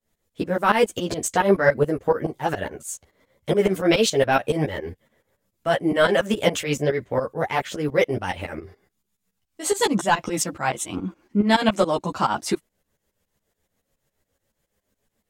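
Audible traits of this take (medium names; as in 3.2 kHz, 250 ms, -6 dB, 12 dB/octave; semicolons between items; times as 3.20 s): tremolo saw up 7.1 Hz, depth 90%; a shimmering, thickened sound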